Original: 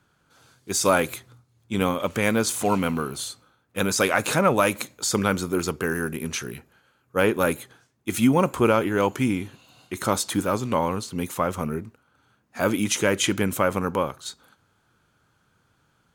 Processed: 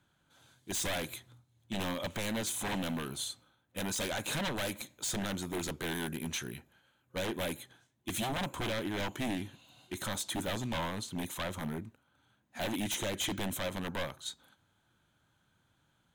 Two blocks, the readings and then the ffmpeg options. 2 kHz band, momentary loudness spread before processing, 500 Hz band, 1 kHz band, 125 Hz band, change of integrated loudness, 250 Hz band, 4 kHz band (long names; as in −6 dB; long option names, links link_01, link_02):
−11.5 dB, 13 LU, −15.5 dB, −14.5 dB, −11.0 dB, −12.0 dB, −13.0 dB, −6.0 dB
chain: -af "alimiter=limit=-10dB:level=0:latency=1:release=394,aeval=exprs='0.0794*(abs(mod(val(0)/0.0794+3,4)-2)-1)':channel_layout=same,superequalizer=7b=0.562:10b=0.631:13b=1.58:14b=0.631,volume=-6.5dB"